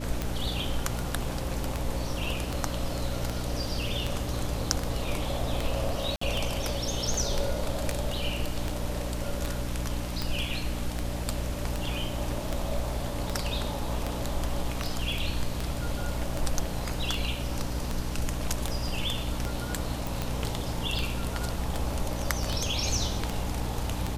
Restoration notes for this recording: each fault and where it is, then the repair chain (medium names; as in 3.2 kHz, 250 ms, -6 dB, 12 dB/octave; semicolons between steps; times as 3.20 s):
hum 60 Hz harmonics 5 -34 dBFS
tick 78 rpm -15 dBFS
6.16–6.21 s: dropout 54 ms
20.07 s: pop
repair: de-click; de-hum 60 Hz, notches 5; interpolate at 6.16 s, 54 ms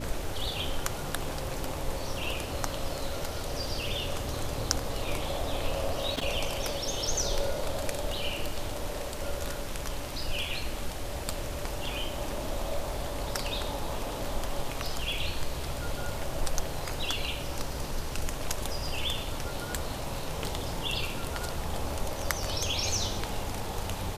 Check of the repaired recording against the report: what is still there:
nothing left